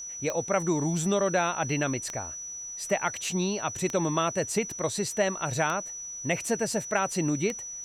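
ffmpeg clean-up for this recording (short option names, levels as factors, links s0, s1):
-af "adeclick=t=4,bandreject=f=5900:w=30,agate=range=0.0891:threshold=0.0282"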